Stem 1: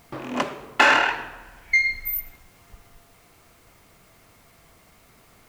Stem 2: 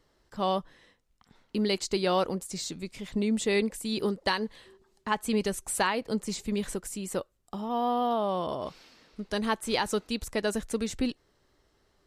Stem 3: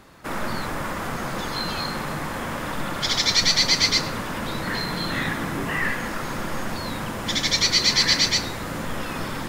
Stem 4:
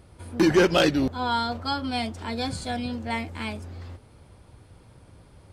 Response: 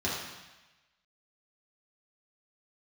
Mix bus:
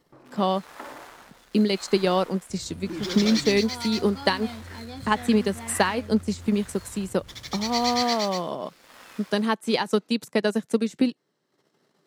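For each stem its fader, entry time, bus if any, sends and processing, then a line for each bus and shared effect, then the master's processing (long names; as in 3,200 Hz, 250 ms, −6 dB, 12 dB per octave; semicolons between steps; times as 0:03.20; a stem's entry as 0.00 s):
−16.5 dB, 0.00 s, no send, treble cut that deepens with the level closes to 640 Hz, closed at −17 dBFS; parametric band 3,900 Hz −14.5 dB 1.5 octaves
+1.5 dB, 0.00 s, no send, low-shelf EQ 220 Hz +8 dB; transient designer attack +5 dB, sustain −8 dB; Butterworth high-pass 150 Hz
−8.0 dB, 0.00 s, no send, high-pass filter 650 Hz 12 dB per octave; rotating-speaker cabinet horn 0.85 Hz; dead-zone distortion −37.5 dBFS
−20.0 dB, 2.50 s, no send, low-shelf EQ 320 Hz +8 dB; envelope flattener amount 50%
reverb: not used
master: no processing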